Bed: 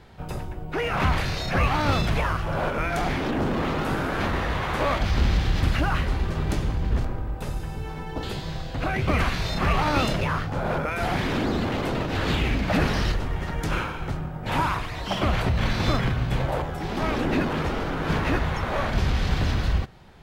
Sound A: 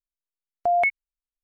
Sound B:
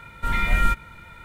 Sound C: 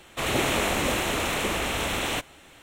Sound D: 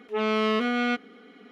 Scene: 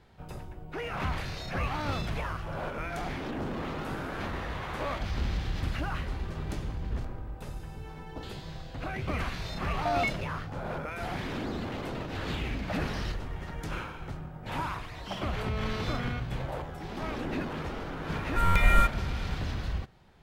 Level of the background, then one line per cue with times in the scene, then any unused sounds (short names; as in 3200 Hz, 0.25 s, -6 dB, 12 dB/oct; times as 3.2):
bed -9.5 dB
9.2 add A -9 dB
15.24 add D -13.5 dB
18.13 add B -1.5 dB + stuck buffer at 0.31, times 9
not used: C